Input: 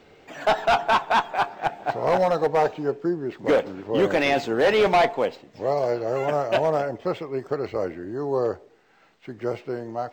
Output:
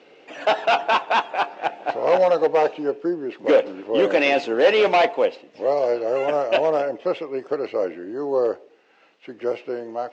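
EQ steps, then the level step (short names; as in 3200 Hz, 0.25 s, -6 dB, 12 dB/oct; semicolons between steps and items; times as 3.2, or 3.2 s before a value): speaker cabinet 260–6800 Hz, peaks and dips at 300 Hz +4 dB, 520 Hz +6 dB, 2700 Hz +7 dB; 0.0 dB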